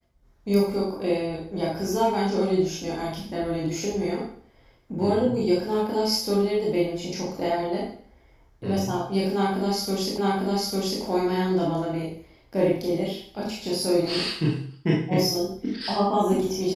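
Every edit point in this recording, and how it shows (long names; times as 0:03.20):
0:10.18: the same again, the last 0.85 s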